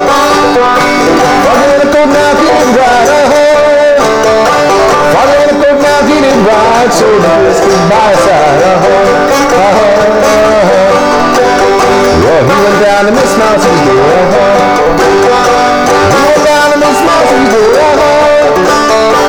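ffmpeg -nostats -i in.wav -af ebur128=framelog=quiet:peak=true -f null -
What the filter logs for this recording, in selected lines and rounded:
Integrated loudness:
  I:          -5.7 LUFS
  Threshold: -15.7 LUFS
Loudness range:
  LRA:         0.5 LU
  Threshold: -25.6 LUFS
  LRA low:    -5.9 LUFS
  LRA high:   -5.4 LUFS
True peak:
  Peak:       -1.7 dBFS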